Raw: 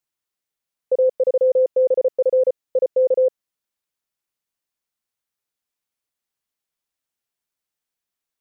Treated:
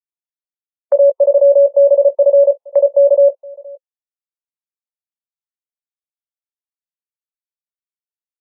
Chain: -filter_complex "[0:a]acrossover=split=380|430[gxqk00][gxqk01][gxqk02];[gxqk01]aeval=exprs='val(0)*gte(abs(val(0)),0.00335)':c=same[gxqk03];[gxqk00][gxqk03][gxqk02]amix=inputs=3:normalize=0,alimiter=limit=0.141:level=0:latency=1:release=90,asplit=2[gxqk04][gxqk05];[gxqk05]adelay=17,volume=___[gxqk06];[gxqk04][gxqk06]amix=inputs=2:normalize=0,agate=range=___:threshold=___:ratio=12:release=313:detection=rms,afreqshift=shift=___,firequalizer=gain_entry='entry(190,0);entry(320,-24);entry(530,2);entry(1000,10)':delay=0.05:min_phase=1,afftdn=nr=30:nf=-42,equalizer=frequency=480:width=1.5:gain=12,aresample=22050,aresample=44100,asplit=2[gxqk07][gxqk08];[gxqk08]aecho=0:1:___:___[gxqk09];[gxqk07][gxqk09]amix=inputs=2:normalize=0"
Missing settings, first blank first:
0.376, 0.251, 0.0447, 47, 468, 0.0708